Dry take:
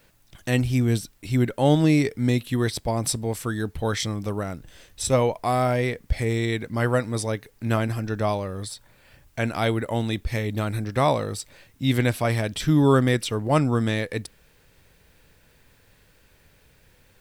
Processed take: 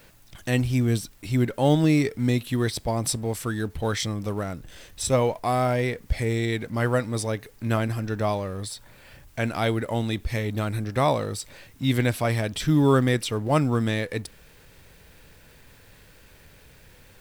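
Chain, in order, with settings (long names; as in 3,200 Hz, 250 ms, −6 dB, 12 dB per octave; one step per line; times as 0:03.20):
mu-law and A-law mismatch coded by mu
level −1.5 dB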